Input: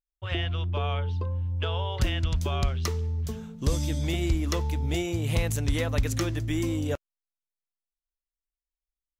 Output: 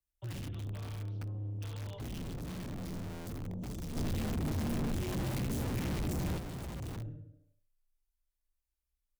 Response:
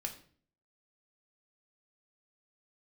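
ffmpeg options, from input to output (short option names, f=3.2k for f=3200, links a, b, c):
-filter_complex "[0:a]equalizer=f=13k:w=0.51:g=8.5[a];[1:a]atrim=start_sample=2205[b];[a][b]afir=irnorm=-1:irlink=0,alimiter=limit=-23.5dB:level=0:latency=1:release=174,bass=f=250:g=4,treble=f=4k:g=-2,asplit=2[c][d];[d]adelay=72,lowpass=f=950:p=1,volume=-5dB,asplit=2[e][f];[f]adelay=72,lowpass=f=950:p=1,volume=0.31,asplit=2[g][h];[h]adelay=72,lowpass=f=950:p=1,volume=0.31,asplit=2[i][j];[j]adelay=72,lowpass=f=950:p=1,volume=0.31[k];[c][e][g][i][k]amix=inputs=5:normalize=0,aeval=exprs='(mod(17.8*val(0)+1,2)-1)/17.8':c=same,acrossover=split=230[l][m];[m]acompressor=threshold=-56dB:ratio=2[n];[l][n]amix=inputs=2:normalize=0,afreqshift=16,asoftclip=type=tanh:threshold=-35dB,asplit=3[o][p][q];[o]afade=t=out:st=3.95:d=0.02[r];[p]acontrast=68,afade=t=in:st=3.95:d=0.02,afade=t=out:st=6.37:d=0.02[s];[q]afade=t=in:st=6.37:d=0.02[t];[r][s][t]amix=inputs=3:normalize=0,volume=-1dB"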